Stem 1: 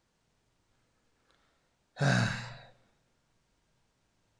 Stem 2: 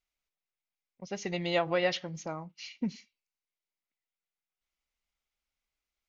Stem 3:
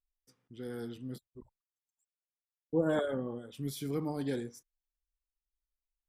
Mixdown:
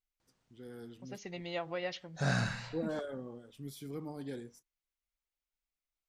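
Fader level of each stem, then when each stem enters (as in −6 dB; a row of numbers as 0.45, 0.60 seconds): −4.0, −9.5, −7.5 decibels; 0.20, 0.00, 0.00 seconds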